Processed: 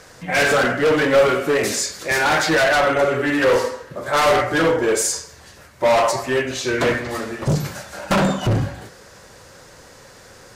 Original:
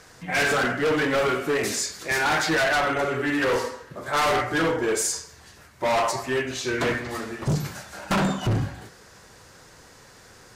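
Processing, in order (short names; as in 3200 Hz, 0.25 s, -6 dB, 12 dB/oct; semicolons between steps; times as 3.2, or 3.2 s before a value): bell 550 Hz +6.5 dB 0.31 oct; gain +4.5 dB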